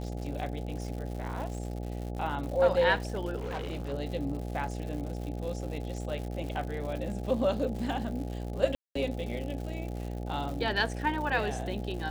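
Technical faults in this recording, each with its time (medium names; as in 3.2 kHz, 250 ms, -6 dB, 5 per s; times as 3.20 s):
buzz 60 Hz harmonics 14 -36 dBFS
crackle 180 per s -38 dBFS
3.36–3.93 s: clipped -31 dBFS
8.75–8.95 s: dropout 204 ms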